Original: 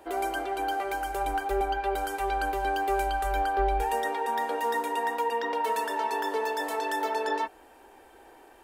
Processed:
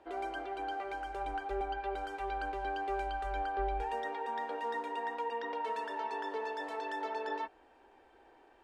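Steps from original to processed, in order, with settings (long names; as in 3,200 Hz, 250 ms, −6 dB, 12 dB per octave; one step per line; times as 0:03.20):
low-pass filter 4,300 Hz 12 dB per octave
level −8.5 dB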